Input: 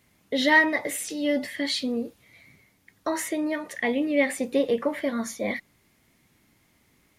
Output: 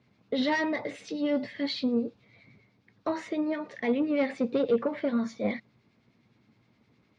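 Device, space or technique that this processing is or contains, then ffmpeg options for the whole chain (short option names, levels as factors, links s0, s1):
guitar amplifier with harmonic tremolo: -filter_complex "[0:a]acrossover=split=1500[s0][s1];[s0]aeval=exprs='val(0)*(1-0.5/2+0.5/2*cos(2*PI*9.7*n/s))':c=same[s2];[s1]aeval=exprs='val(0)*(1-0.5/2-0.5/2*cos(2*PI*9.7*n/s))':c=same[s3];[s2][s3]amix=inputs=2:normalize=0,asoftclip=type=tanh:threshold=0.1,highpass=86,equalizer=f=120:t=q:w=4:g=9,equalizer=f=220:t=q:w=4:g=6,equalizer=f=450:t=q:w=4:g=4,equalizer=f=1900:t=q:w=4:g=-6,equalizer=f=3100:t=q:w=4:g=-5,lowpass=f=4500:w=0.5412,lowpass=f=4500:w=1.3066"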